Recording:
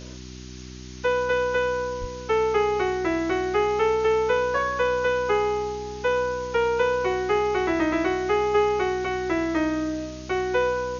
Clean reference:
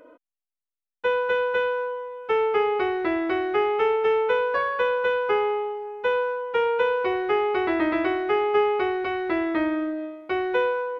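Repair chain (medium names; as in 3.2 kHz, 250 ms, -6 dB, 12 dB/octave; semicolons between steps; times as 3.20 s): de-hum 62.8 Hz, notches 6; 2.00–2.12 s: high-pass 140 Hz 24 dB/octave; noise print and reduce 6 dB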